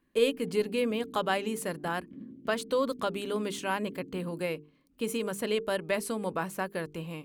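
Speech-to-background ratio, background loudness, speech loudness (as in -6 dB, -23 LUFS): 17.0 dB, -49.0 LUFS, -32.0 LUFS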